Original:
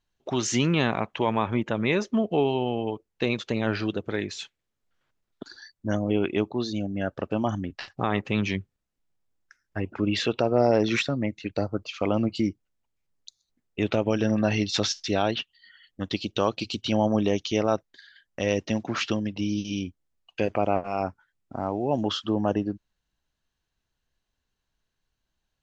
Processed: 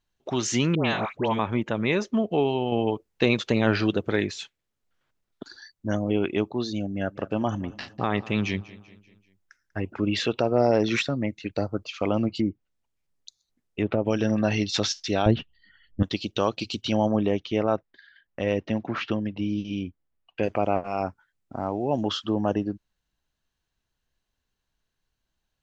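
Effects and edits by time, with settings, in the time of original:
0:00.75–0:01.39: all-pass dispersion highs, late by 107 ms, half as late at 1,200 Hz
0:02.72–0:04.31: clip gain +4.5 dB
0:06.78–0:09.79: repeating echo 193 ms, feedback 49%, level −19 dB
0:12.27–0:14.05: treble cut that deepens with the level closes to 890 Hz, closed at −20 dBFS
0:15.26–0:16.03: spectral tilt −4.5 dB per octave
0:17.11–0:20.43: low-pass filter 2,600 Hz

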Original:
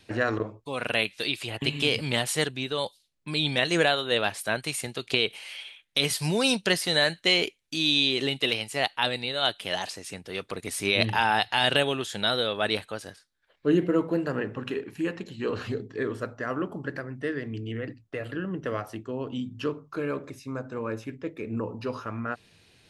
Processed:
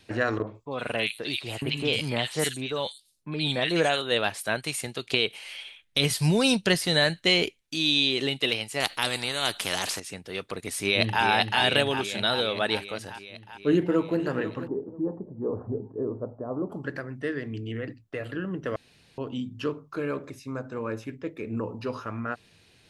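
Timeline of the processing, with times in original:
0:00.42–0:04.02: three-band delay without the direct sound lows, mids, highs 50/130 ms, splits 1,800/5,500 Hz
0:05.45–0:07.61: low-shelf EQ 170 Hz +11 dB
0:08.80–0:10.00: every bin compressed towards the loudest bin 2 to 1
0:10.80–0:11.23: delay throw 390 ms, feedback 70%, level −5 dB
0:13.70–0:14.17: delay throw 490 ms, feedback 30%, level −11.5 dB
0:14.67–0:16.70: Butterworth low-pass 950 Hz
0:18.76–0:19.18: fill with room tone

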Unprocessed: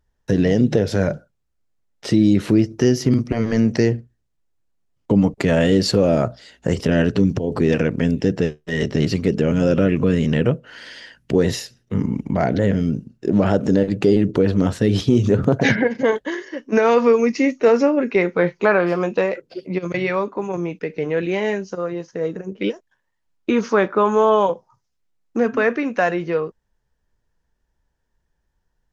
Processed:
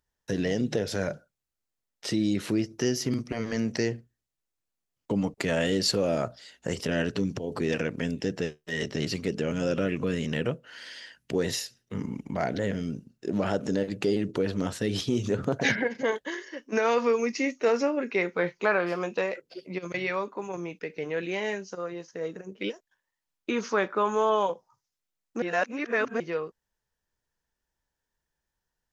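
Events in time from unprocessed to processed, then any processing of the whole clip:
0:25.42–0:26.20: reverse
whole clip: spectral tilt +2 dB per octave; level −7.5 dB

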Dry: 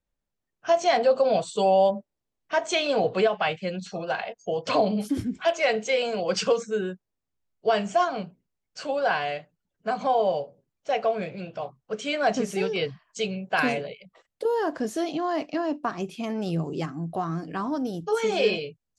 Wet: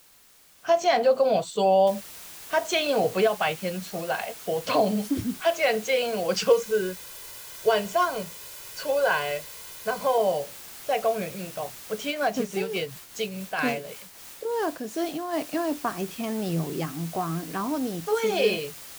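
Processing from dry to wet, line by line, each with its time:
0:01.87: noise floor change −56 dB −43 dB
0:06.49–0:10.18: comb filter 2 ms, depth 55%
0:12.10–0:15.32: shaped tremolo triangle 6.4 Hz → 2.1 Hz, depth 55%

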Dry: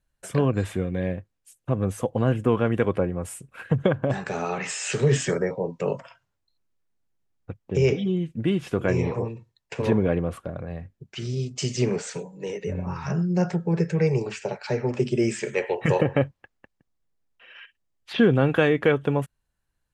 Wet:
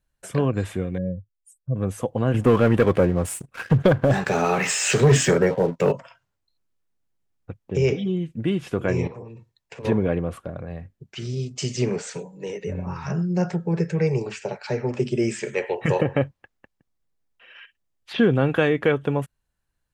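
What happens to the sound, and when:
0:00.98–0:01.76: expanding power law on the bin magnitudes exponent 2.3
0:02.34–0:05.92: leveller curve on the samples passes 2
0:09.07–0:09.85: downward compressor 3 to 1, threshold −38 dBFS

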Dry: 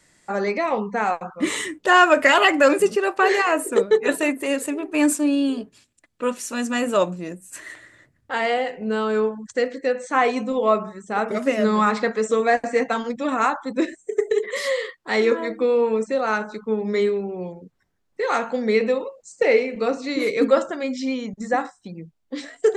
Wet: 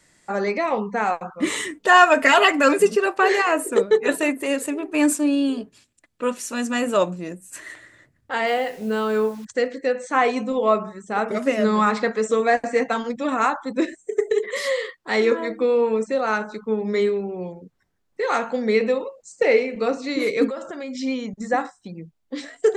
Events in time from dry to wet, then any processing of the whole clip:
0:01.70–0:03.06: comb filter 4.4 ms, depth 59%
0:08.47–0:09.45: bit-depth reduction 8 bits, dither none
0:20.49–0:20.95: downward compressor 4 to 1, threshold −29 dBFS

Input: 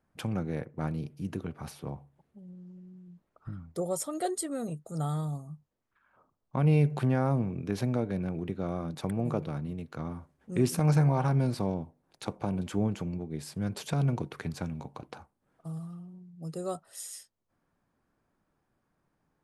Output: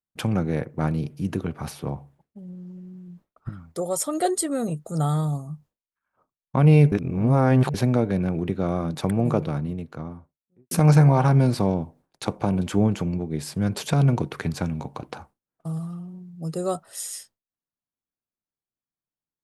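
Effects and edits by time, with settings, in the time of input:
0:03.49–0:04.07: low-shelf EQ 450 Hz −8 dB
0:06.92–0:07.74: reverse
0:09.36–0:10.71: fade out and dull
whole clip: downward expander −55 dBFS; level +8.5 dB

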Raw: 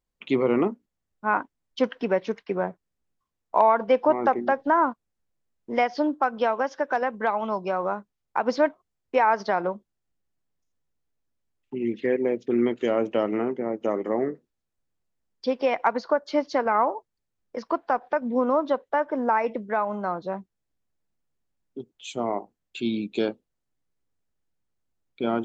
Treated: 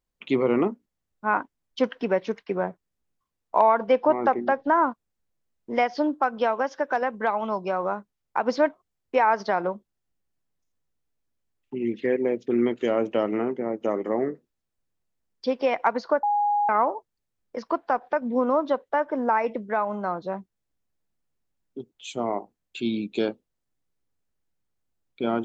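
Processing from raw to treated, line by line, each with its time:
0:03.93–0:04.70: low-pass filter 6,300 Hz
0:16.23–0:16.69: beep over 825 Hz −19.5 dBFS

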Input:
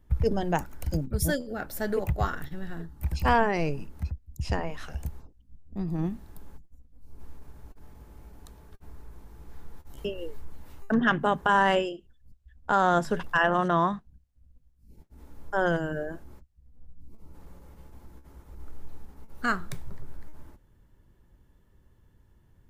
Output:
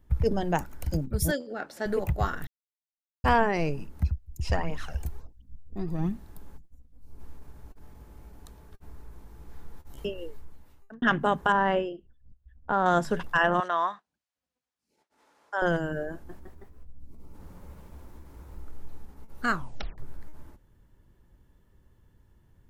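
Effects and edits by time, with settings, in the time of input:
0:01.31–0:01.86: band-pass filter 260–6,100 Hz
0:02.47–0:03.24: silence
0:04.02–0:06.12: phase shifter 1.4 Hz
0:10.03–0:11.02: fade out
0:11.52–0:12.86: head-to-tape spacing loss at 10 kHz 27 dB
0:13.60–0:15.62: band-pass filter 730–7,300 Hz
0:16.13–0:18.60: delay with pitch and tempo change per echo 161 ms, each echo +1 semitone, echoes 3
0:19.52: tape stop 0.46 s

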